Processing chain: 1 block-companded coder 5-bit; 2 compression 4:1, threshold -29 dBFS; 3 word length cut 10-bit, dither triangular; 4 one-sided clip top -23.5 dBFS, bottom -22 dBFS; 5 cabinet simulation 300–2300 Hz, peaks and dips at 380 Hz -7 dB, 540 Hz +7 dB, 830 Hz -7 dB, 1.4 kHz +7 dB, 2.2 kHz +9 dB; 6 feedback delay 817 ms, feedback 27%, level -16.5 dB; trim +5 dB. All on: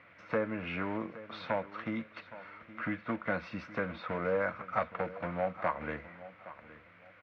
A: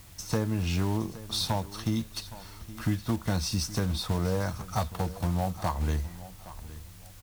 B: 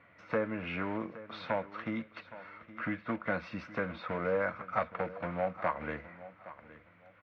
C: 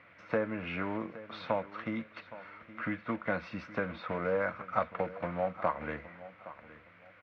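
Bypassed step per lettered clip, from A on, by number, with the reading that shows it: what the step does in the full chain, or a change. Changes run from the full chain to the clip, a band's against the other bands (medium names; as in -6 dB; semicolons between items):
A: 5, 4 kHz band +16.0 dB; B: 3, distortion -25 dB; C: 4, distortion -17 dB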